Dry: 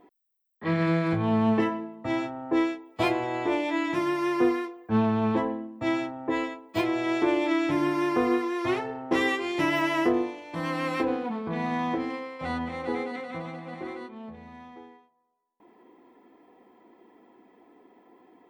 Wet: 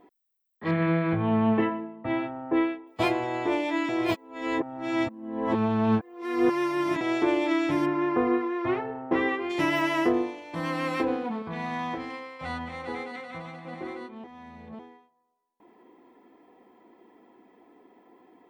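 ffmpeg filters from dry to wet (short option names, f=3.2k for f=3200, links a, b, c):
-filter_complex "[0:a]asettb=1/sr,asplit=3[a][b][c];[a]atrim=end=0.714[d];[b]atrim=start=0.71:end=2.87,asetpts=PTS-STARTPTS,afade=t=in:d=0.004:c=qsin,afade=t=out:st=2.156:d=0.004:c=qsin,lowpass=f=3.2k:w=0.5412,lowpass=f=3.2k:w=1.3066[e];[c]atrim=start=2.866[f];[d][e]acrossfade=d=0.004:c1=hsin:c2=qsin[g];[g][f]acrossfade=d=0.004:c1=qsin:c2=hsin,asplit=3[h][i][j];[h]afade=t=out:st=7.85:d=0.02[k];[i]lowpass=2.1k,afade=t=in:st=7.85:d=0.02,afade=t=out:st=9.49:d=0.02[l];[j]afade=t=in:st=9.49:d=0.02[m];[k][l][m]amix=inputs=3:normalize=0,asettb=1/sr,asplit=3[n][o][p];[n]atrim=end=11.424[q];[o]atrim=start=11.42:end=13.65,asetpts=PTS-STARTPTS,afade=t=in:d=0.004:c=qsin,afade=t=out:st=2.226:d=0.004:c=qsin,equalizer=f=330:w=0.77:g=-7.5[r];[p]atrim=start=13.646[s];[q][r]acrossfade=d=0.004:c1=hsin:c2=qsin[t];[t][s]acrossfade=d=0.004:c1=qsin:c2=hsin,asplit=5[u][v][w][x][y];[u]atrim=end=3.892[z];[v]atrim=start=3.888:end=7.012,asetpts=PTS-STARTPTS,areverse[aa];[w]atrim=start=7.008:end=14.242[ab];[x]atrim=start=14.238:end=14.792,asetpts=PTS-STARTPTS,areverse[ac];[y]atrim=start=14.788[ad];[z][aa]acrossfade=d=0.004:c1=hsin:c2=hsin[ae];[ae][ab]acrossfade=d=0.004:c1=hsin:c2=hsin[af];[af][ac]acrossfade=d=0.004:c1=hsin:c2=hsin[ag];[ag][ad]acrossfade=d=0.004:c1=hsin:c2=hsin"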